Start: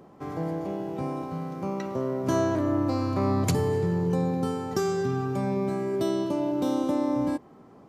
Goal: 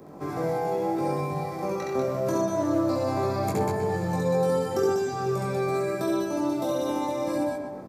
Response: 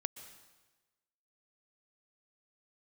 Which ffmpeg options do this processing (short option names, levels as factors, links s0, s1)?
-filter_complex "[0:a]asplit=2[s0][s1];[s1]aecho=0:1:67.06|192.4:1|0.631[s2];[s0][s2]amix=inputs=2:normalize=0,crystalizer=i=1:c=0,acrossover=split=420|930|2700[s3][s4][s5][s6];[s3]acompressor=threshold=0.0141:ratio=4[s7];[s4]acompressor=threshold=0.0251:ratio=4[s8];[s5]acompressor=threshold=0.00708:ratio=4[s9];[s6]acompressor=threshold=0.00501:ratio=4[s10];[s7][s8][s9][s10]amix=inputs=4:normalize=0,equalizer=f=360:t=o:w=1.7:g=4,asplit=2[s11][s12];[s12]adelay=124,lowpass=f=2400:p=1,volume=0.631,asplit=2[s13][s14];[s14]adelay=124,lowpass=f=2400:p=1,volume=0.51,asplit=2[s15][s16];[s16]adelay=124,lowpass=f=2400:p=1,volume=0.51,asplit=2[s17][s18];[s18]adelay=124,lowpass=f=2400:p=1,volume=0.51,asplit=2[s19][s20];[s20]adelay=124,lowpass=f=2400:p=1,volume=0.51,asplit=2[s21][s22];[s22]adelay=124,lowpass=f=2400:p=1,volume=0.51,asplit=2[s23][s24];[s24]adelay=124,lowpass=f=2400:p=1,volume=0.51[s25];[s13][s15][s17][s19][s21][s23][s25]amix=inputs=7:normalize=0[s26];[s11][s26]amix=inputs=2:normalize=0,flanger=delay=20:depth=3:speed=0.79,bandreject=f=3000:w=7.8,volume=1.68"